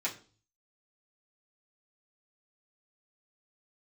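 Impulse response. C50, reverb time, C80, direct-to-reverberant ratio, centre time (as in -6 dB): 13.0 dB, 0.40 s, 17.5 dB, -7.5 dB, 15 ms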